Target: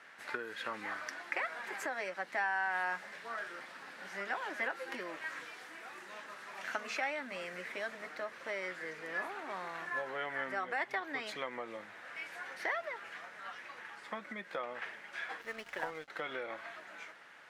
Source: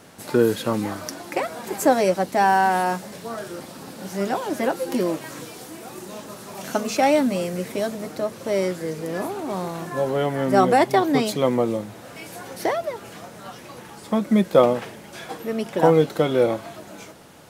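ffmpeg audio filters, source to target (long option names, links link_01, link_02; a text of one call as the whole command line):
ffmpeg -i in.wav -filter_complex "[0:a]acompressor=threshold=-21dB:ratio=20,bandpass=frequency=1800:width_type=q:width=2.6:csg=0,asettb=1/sr,asplit=3[link_01][link_02][link_03];[link_01]atrim=end=15.414[link_04];[link_02]atrim=start=15.41:end=16.08,asetpts=PTS-STARTPTS,afade=type=in:duration=0.004:curve=qsin,afade=type=out:start_time=0.666:duration=0.004:curve=qsin,aeval=exprs='sgn(val(0))*max(abs(val(0))-0.002,0)':channel_layout=same[link_05];[link_03]atrim=start=16.076[link_06];[link_04][link_05]acrossfade=duration=0.004:curve1=hsin:curve2=qsin[link_07];[link_07][link_06]acrossfade=duration=0.004:curve1=qsin:curve2=hsin,volume=2dB" out.wav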